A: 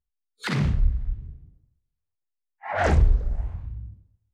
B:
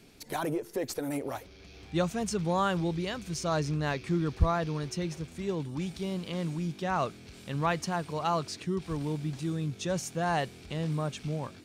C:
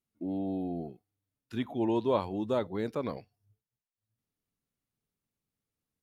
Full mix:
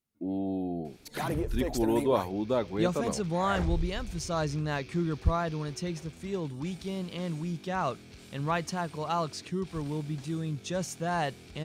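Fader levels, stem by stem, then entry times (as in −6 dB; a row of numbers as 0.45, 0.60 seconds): −12.5, −1.0, +1.5 decibels; 0.70, 0.85, 0.00 seconds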